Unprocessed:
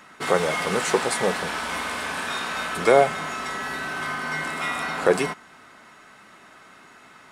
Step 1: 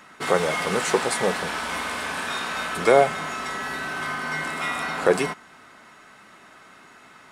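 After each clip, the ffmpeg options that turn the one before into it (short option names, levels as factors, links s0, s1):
-af anull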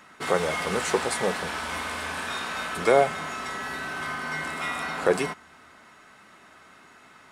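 -af "equalizer=f=78:w=6.9:g=11.5,volume=0.708"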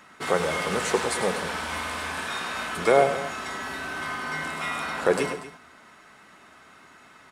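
-af "aecho=1:1:101|162|239:0.316|0.119|0.168"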